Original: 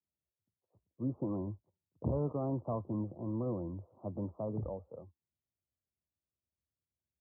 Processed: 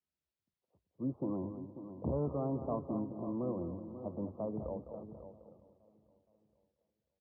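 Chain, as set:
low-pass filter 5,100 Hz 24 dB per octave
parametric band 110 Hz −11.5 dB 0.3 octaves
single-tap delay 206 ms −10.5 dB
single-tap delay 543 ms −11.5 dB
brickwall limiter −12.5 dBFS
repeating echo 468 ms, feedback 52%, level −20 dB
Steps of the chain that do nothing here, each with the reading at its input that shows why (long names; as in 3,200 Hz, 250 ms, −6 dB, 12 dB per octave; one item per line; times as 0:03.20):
low-pass filter 5,100 Hz: nothing at its input above 1,200 Hz
brickwall limiter −12.5 dBFS: peak of its input −24.5 dBFS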